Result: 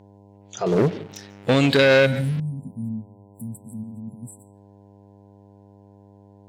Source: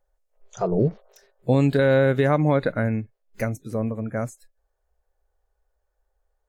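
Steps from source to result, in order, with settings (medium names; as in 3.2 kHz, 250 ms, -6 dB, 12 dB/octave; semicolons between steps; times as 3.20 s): 3.83–4.23 s: compressor with a negative ratio -31 dBFS, ratio -1; 2.06–4.53 s: spectral selection erased 260–7500 Hz; on a send at -18 dB: reverberation RT60 0.40 s, pre-delay 136 ms; on the sum: mains buzz 100 Hz, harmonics 10, -44 dBFS -7 dB/octave; 0.66–2.40 s: waveshaping leveller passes 2; frequency weighting D; trim -1 dB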